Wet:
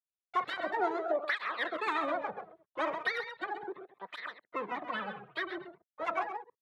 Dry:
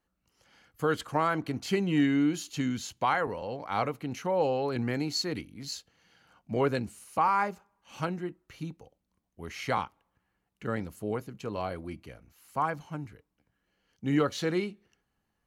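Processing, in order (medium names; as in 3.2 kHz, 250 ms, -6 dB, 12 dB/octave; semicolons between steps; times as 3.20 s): chunks repeated in reverse 133 ms, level -10.5 dB; steep low-pass 870 Hz 72 dB/octave; peaking EQ 110 Hz -10.5 dB 0.32 oct; in parallel at -3.5 dB: saturation -27 dBFS, distortion -11 dB; on the sum: gate -54 dBFS, range -47 dB; harmony voices +12 st -10 dB; on a send: delay 308 ms -10 dB; on the sum: speed mistake 33 rpm record played at 78 rpm; cancelling through-zero flanger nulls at 0.36 Hz, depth 4.4 ms; trim -3 dB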